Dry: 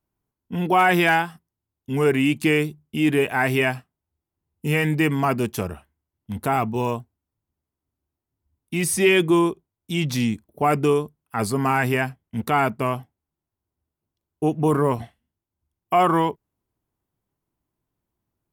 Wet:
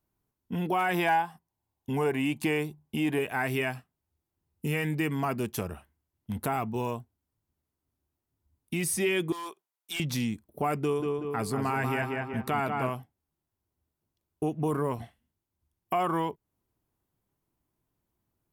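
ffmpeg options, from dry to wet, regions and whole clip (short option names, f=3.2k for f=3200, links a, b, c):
-filter_complex "[0:a]asettb=1/sr,asplit=3[a][b][c];[a]atrim=end=0.944[d];[b]atrim=start=0.94:end=3.19,asetpts=PTS-STARTPTS,afade=t=in:d=0.004:c=qsin,afade=t=out:st=2.246:d=0.004:c=qsin,equalizer=f=850:w=1.6:g=10.5,bandreject=f=1.3k:w=8[e];[c]atrim=start=3.186[f];[d][e]acrossfade=d=0.004:c1=hsin:c2=qsin[g];[g][f]acrossfade=d=0.004:c1=qsin:c2=hsin,asettb=1/sr,asplit=3[h][i][j];[h]atrim=end=9.324[k];[i]atrim=start=9.32:end=10,asetpts=PTS-STARTPTS,afade=t=in:d=0.004:c=qsin,afade=t=out:st=0.676:d=0.004:c=qsin,highpass=870,asoftclip=type=hard:threshold=-28.5dB[l];[j]atrim=start=9.996[m];[k][l]acrossfade=d=0.004:c1=hsin:c2=qsin[n];[n][m]acrossfade=d=0.004:c1=qsin:c2=hsin,asettb=1/sr,asplit=3[o][p][q];[o]atrim=end=10.814[r];[p]atrim=start=10.81:end=12.9,asetpts=PTS-STARTPTS,afade=t=in:d=0.004:c=qsin,afade=t=out:st=2.086:d=0.004:c=qsin,highshelf=f=6.5k:g=-4.5,asplit=2[s][t];[t]adelay=188,lowpass=f=2.6k:p=1,volume=-4dB,asplit=2[u][v];[v]adelay=188,lowpass=f=2.6k:p=1,volume=0.45,asplit=2[w][x];[x]adelay=188,lowpass=f=2.6k:p=1,volume=0.45,asplit=2[y][z];[z]adelay=188,lowpass=f=2.6k:p=1,volume=0.45,asplit=2[aa][ab];[ab]adelay=188,lowpass=f=2.6k:p=1,volume=0.45,asplit=2[ac][ad];[ad]adelay=188,lowpass=f=2.6k:p=1,volume=0.45[ae];[s][u][w][y][aa][ac][ae]amix=inputs=7:normalize=0,atrim=end_sample=92169[af];[q]atrim=start=12.896[ag];[r][af]acrossfade=d=0.004:c1=hsin:c2=qsin[ah];[ah][ag]acrossfade=d=0.004:c1=qsin:c2=hsin,equalizer=f=13k:t=o:w=0.69:g=3,acompressor=threshold=-33dB:ratio=2"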